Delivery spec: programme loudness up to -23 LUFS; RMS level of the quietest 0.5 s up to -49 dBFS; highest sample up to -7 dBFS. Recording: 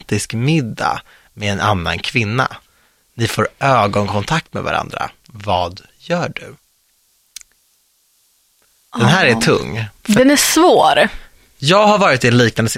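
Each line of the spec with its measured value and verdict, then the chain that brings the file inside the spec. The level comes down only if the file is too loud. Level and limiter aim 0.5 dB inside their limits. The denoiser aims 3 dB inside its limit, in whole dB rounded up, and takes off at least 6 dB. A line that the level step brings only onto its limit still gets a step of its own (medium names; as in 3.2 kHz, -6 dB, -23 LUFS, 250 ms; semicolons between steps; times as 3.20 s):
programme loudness -15.0 LUFS: fail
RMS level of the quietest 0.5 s -59 dBFS: pass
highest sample -1.5 dBFS: fail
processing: trim -8.5 dB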